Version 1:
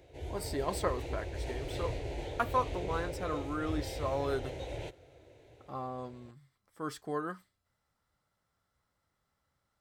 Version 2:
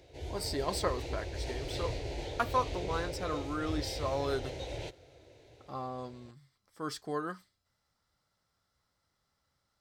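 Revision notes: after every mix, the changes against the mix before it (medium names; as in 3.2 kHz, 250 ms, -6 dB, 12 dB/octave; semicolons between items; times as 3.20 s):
master: add peaking EQ 4.9 kHz +8.5 dB 0.91 oct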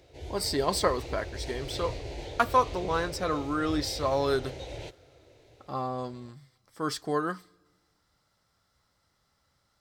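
speech +6.5 dB; reverb: on, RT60 1.5 s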